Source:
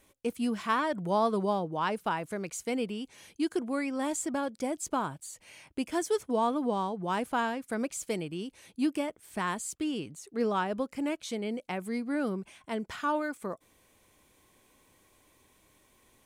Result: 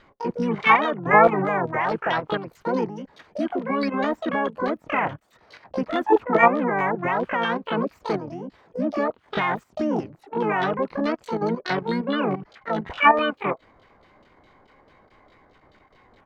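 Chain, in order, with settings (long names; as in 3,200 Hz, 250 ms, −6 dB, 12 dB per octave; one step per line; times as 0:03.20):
auto-filter low-pass saw down 4.7 Hz 610–1,800 Hz
output level in coarse steps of 11 dB
pitch-shifted copies added −5 semitones −5 dB, +12 semitones −3 dB
level +8 dB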